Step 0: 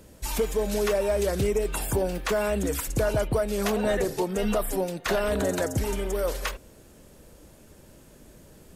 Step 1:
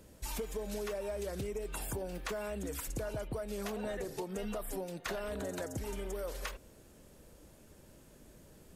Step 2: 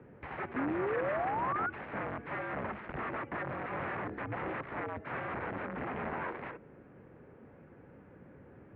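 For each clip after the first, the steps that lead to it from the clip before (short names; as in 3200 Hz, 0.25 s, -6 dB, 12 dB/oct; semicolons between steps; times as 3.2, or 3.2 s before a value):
compressor, threshold -29 dBFS, peak gain reduction 8.5 dB; gain -6.5 dB
wrapped overs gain 36 dB; mistuned SSB -71 Hz 160–2200 Hz; painted sound rise, 0.56–1.7, 250–1500 Hz -40 dBFS; gain +6 dB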